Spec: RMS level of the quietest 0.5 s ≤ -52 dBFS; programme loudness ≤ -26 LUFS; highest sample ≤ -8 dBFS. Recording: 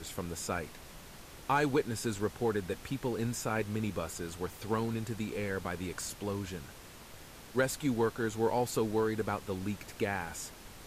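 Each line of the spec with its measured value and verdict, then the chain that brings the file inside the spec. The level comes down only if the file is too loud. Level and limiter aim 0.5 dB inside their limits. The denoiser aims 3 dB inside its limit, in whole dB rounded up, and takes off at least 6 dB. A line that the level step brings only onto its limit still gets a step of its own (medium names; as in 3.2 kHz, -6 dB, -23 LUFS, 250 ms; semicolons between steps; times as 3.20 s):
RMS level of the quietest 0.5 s -51 dBFS: fail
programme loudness -34.5 LUFS: pass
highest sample -17.5 dBFS: pass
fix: noise reduction 6 dB, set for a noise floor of -51 dBFS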